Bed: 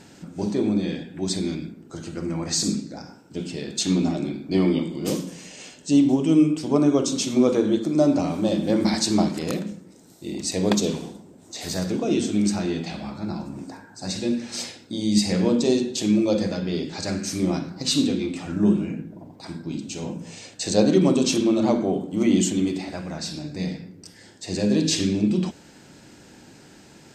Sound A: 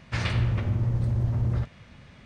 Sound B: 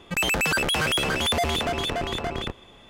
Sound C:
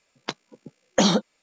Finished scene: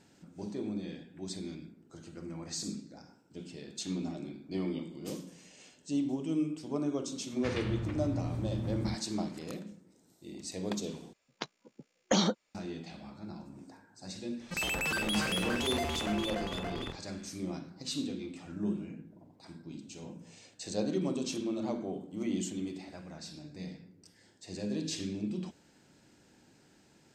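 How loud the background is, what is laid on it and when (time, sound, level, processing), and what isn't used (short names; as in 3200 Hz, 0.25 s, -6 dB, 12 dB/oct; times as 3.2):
bed -14.5 dB
7.31 add A -8.5 dB + low shelf 66 Hz -9 dB
11.13 replace with C -8 dB
14.4 add B -10.5 dB + doubler 48 ms -6.5 dB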